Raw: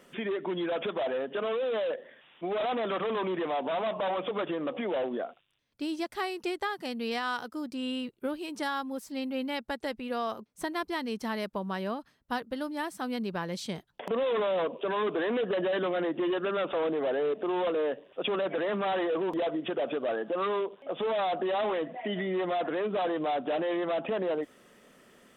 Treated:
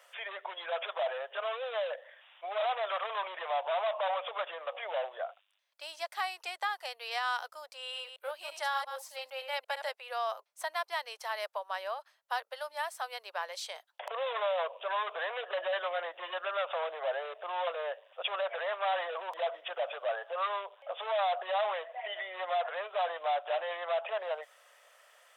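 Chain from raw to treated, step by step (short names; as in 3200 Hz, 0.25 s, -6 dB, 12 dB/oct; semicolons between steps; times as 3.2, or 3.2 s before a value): 7.82–9.9 reverse delay 0.114 s, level -7.5 dB; steep high-pass 570 Hz 48 dB/oct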